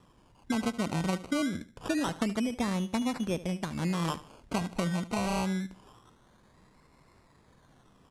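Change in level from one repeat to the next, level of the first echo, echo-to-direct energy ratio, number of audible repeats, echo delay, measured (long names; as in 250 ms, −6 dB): −9.0 dB, −16.5 dB, −16.0 dB, 3, 74 ms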